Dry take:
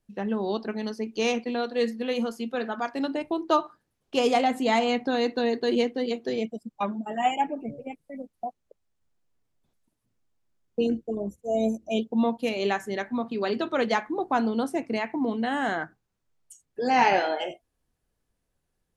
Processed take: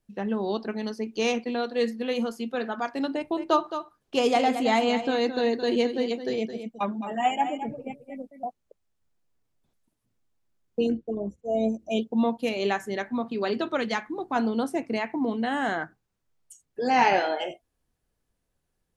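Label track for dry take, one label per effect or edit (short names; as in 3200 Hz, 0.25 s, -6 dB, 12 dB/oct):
3.130000	8.460000	echo 0.217 s -10 dB
10.920000	11.790000	air absorption 110 m
13.770000	14.360000	bell 620 Hz -6.5 dB 1.7 oct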